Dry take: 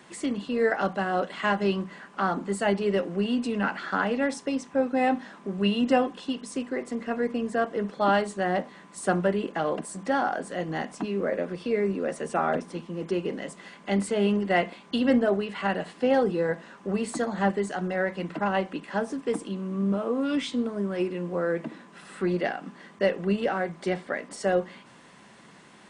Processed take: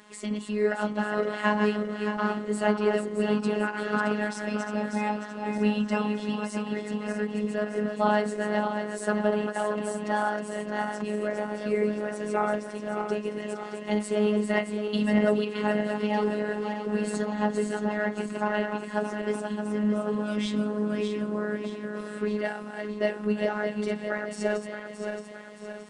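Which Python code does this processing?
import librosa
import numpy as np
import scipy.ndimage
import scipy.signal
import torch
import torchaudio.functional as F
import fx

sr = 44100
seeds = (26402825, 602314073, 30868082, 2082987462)

y = fx.reverse_delay_fb(x, sr, ms=310, feedback_pct=69, wet_db=-6.0)
y = fx.robotise(y, sr, hz=210.0)
y = fx.end_taper(y, sr, db_per_s=190.0)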